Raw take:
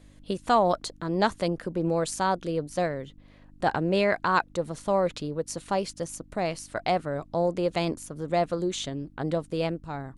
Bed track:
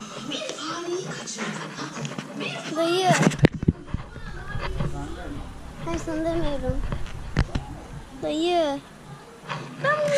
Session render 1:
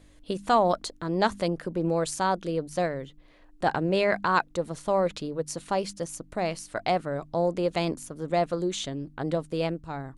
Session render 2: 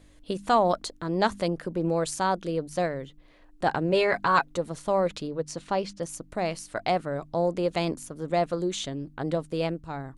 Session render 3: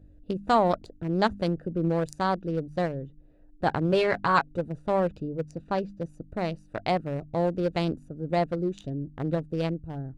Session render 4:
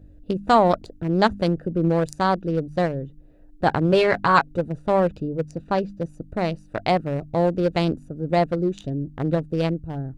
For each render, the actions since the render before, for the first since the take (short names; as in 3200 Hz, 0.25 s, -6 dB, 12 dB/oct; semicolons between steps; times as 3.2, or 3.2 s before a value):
de-hum 50 Hz, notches 5
3.92–4.58 comb 7.2 ms; 5.27–6.01 LPF 8000 Hz -> 4700 Hz
Wiener smoothing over 41 samples; bell 84 Hz +6.5 dB 2.1 oct
gain +5.5 dB